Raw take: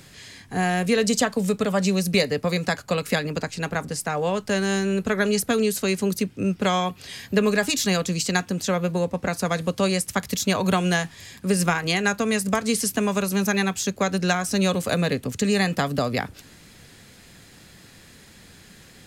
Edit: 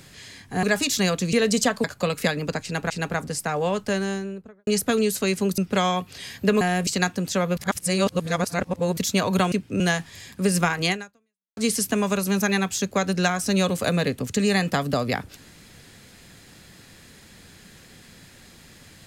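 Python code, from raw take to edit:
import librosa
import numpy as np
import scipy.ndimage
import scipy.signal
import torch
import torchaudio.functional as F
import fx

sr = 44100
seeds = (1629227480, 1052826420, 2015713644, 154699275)

y = fx.studio_fade_out(x, sr, start_s=4.36, length_s=0.92)
y = fx.edit(y, sr, fx.swap(start_s=0.63, length_s=0.26, other_s=7.5, other_length_s=0.7),
    fx.cut(start_s=1.4, length_s=1.32),
    fx.repeat(start_s=3.51, length_s=0.27, count=2),
    fx.move(start_s=6.19, length_s=0.28, to_s=10.85),
    fx.reverse_span(start_s=8.9, length_s=1.4),
    fx.fade_out_span(start_s=11.97, length_s=0.65, curve='exp'), tone=tone)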